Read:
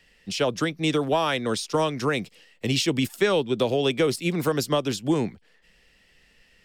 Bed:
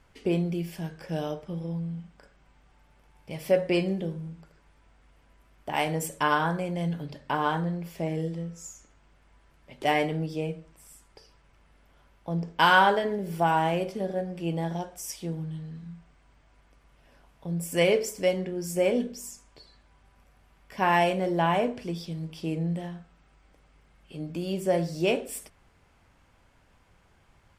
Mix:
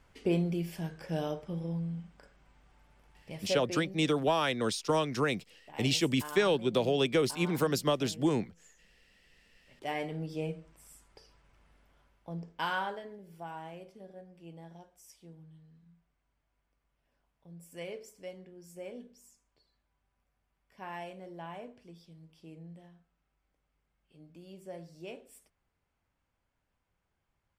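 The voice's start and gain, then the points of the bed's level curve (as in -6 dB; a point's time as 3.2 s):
3.15 s, -5.0 dB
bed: 3.16 s -2.5 dB
3.98 s -19 dB
9.35 s -19 dB
10.45 s -4 dB
11.72 s -4 dB
13.27 s -19.5 dB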